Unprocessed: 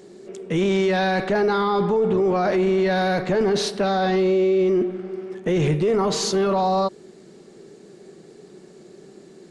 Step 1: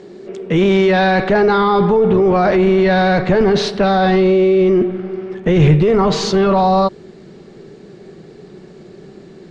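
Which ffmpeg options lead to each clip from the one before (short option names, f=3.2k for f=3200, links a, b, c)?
-af "lowpass=4.1k,asubboost=boost=2.5:cutoff=160,volume=8dB"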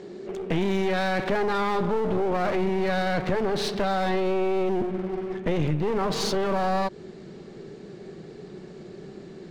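-af "acompressor=threshold=-16dB:ratio=6,aeval=exprs='clip(val(0),-1,0.0398)':c=same,volume=-3.5dB"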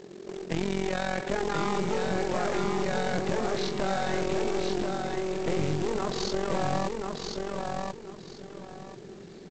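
-af "tremolo=f=44:d=0.788,aresample=16000,acrusher=bits=3:mode=log:mix=0:aa=0.000001,aresample=44100,aecho=1:1:1036|2072|3108:0.631|0.145|0.0334,volume=-2dB"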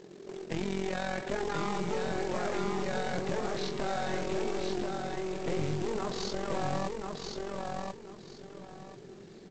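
-af "flanger=delay=6.1:depth=4:regen=-64:speed=0.57:shape=triangular"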